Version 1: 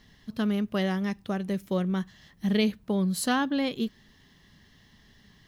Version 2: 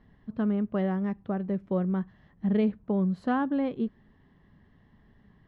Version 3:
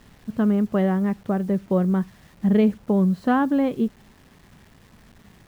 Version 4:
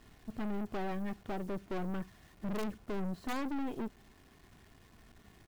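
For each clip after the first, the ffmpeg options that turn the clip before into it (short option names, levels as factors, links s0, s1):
-af "lowpass=1200"
-af "acrusher=bits=9:mix=0:aa=0.000001,volume=2.24"
-af "aecho=1:1:2.8:0.37,aeval=exprs='(mod(2.99*val(0)+1,2)-1)/2.99':c=same,aeval=exprs='(tanh(31.6*val(0)+0.65)-tanh(0.65))/31.6':c=same,volume=0.562"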